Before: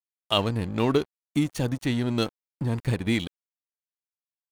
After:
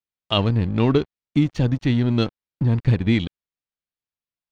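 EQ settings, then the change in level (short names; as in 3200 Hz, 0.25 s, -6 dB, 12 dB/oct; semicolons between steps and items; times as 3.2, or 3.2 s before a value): air absorption 210 m; low shelf 280 Hz +10.5 dB; high shelf 2400 Hz +9.5 dB; 0.0 dB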